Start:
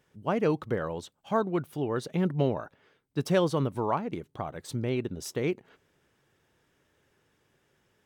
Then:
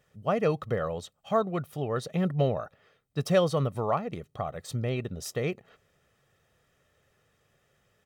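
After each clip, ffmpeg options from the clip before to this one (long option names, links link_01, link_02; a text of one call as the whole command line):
ffmpeg -i in.wav -af "aecho=1:1:1.6:0.57" out.wav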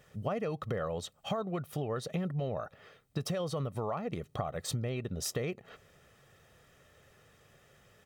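ffmpeg -i in.wav -af "alimiter=limit=-20.5dB:level=0:latency=1:release=31,acompressor=threshold=-39dB:ratio=6,volume=7dB" out.wav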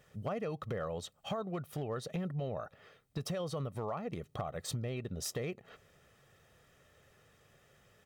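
ffmpeg -i in.wav -af "volume=26dB,asoftclip=hard,volume=-26dB,volume=-3dB" out.wav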